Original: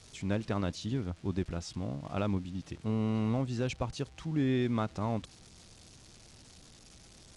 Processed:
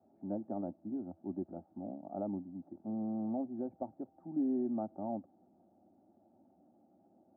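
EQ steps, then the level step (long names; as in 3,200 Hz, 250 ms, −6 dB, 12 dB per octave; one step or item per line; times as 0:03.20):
Bessel high-pass filter 190 Hz, order 8
elliptic low-pass filter 890 Hz, stop band 70 dB
phaser with its sweep stopped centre 680 Hz, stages 8
0.0 dB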